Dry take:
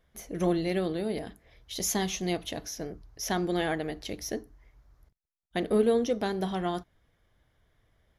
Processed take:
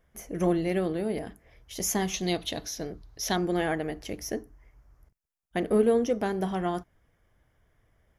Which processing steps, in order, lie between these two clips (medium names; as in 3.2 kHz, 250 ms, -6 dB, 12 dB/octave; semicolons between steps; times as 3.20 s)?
peaking EQ 3.9 kHz -11 dB 0.46 oct, from 2.14 s +6 dB, from 3.36 s -11.5 dB; trim +1.5 dB